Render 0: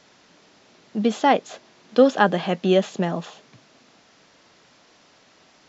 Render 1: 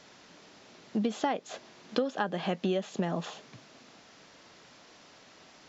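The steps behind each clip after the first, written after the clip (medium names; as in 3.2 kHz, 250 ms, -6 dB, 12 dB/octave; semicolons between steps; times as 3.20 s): compression 10:1, threshold -26 dBFS, peak gain reduction 17.5 dB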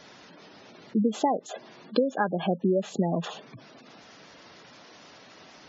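spectral gate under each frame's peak -15 dB strong; trim +5.5 dB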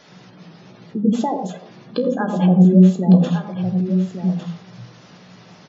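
feedback comb 61 Hz, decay 0.22 s, harmonics all, mix 70%; delay 1155 ms -8.5 dB; on a send at -7.5 dB: reverberation RT60 0.30 s, pre-delay 77 ms; on the sum: trim +5.5 dB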